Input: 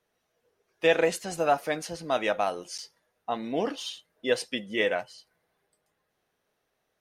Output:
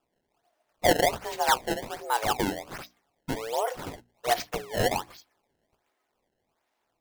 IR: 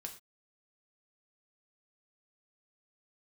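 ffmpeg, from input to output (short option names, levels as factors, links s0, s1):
-af "afreqshift=220,acrusher=samples=21:mix=1:aa=0.000001:lfo=1:lforange=33.6:lforate=1.3,bandreject=f=60:t=h:w=6,bandreject=f=120:t=h:w=6,bandreject=f=180:t=h:w=6,bandreject=f=240:t=h:w=6,bandreject=f=300:t=h:w=6"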